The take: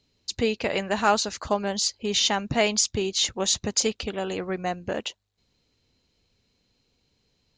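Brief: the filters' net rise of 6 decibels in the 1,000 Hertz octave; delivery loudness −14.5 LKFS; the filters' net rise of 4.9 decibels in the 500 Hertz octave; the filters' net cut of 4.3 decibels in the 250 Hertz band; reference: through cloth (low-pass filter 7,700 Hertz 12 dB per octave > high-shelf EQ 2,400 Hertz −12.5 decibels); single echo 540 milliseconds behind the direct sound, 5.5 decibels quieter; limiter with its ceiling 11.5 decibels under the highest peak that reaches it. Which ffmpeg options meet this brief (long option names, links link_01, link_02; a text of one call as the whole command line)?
ffmpeg -i in.wav -af "equalizer=frequency=250:width_type=o:gain=-8.5,equalizer=frequency=500:width_type=o:gain=7,equalizer=frequency=1000:width_type=o:gain=8,alimiter=limit=-13.5dB:level=0:latency=1,lowpass=7700,highshelf=frequency=2400:gain=-12.5,aecho=1:1:540:0.531,volume=12.5dB" out.wav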